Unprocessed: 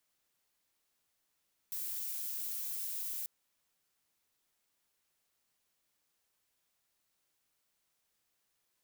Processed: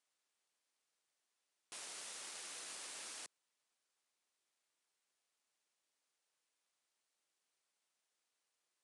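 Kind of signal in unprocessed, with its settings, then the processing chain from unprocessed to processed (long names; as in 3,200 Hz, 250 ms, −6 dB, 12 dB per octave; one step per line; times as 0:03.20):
noise violet, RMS −39 dBFS 1.54 s
half-wave rectification
high-pass filter 320 Hz 12 dB per octave
downsampling to 22,050 Hz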